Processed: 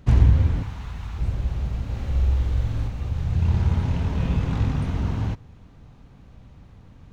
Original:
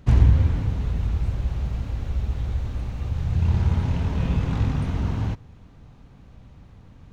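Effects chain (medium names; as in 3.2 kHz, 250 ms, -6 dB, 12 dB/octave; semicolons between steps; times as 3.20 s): 0.63–1.18 s: resonant low shelf 690 Hz -8.5 dB, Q 1.5; 1.85–2.88 s: flutter echo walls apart 7.7 m, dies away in 0.86 s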